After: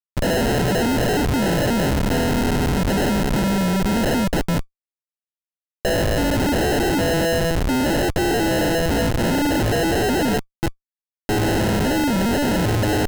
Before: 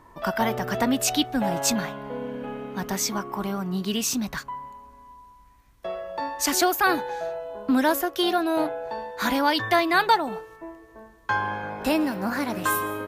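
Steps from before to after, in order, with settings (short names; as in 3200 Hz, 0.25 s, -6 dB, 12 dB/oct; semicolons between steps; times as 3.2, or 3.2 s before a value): Schmitt trigger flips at -32.5 dBFS; sample-and-hold 38×; gain +7.5 dB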